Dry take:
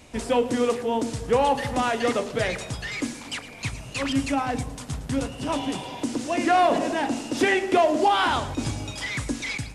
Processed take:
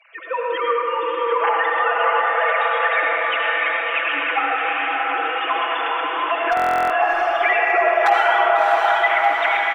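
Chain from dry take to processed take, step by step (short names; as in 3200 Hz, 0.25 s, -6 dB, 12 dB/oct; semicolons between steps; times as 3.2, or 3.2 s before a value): sine-wave speech; AGC gain up to 7 dB; resonant high-pass 1200 Hz, resonance Q 1.8; wavefolder -7.5 dBFS; comb 6 ms, depth 98%; diffused feedback echo 0.677 s, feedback 47%, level -4 dB; compressor 2:1, threshold -31 dBFS, peak gain reduction 13 dB; reverb RT60 3.6 s, pre-delay 63 ms, DRR -2.5 dB; stuck buffer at 6.55, samples 1024, times 14; gain +5 dB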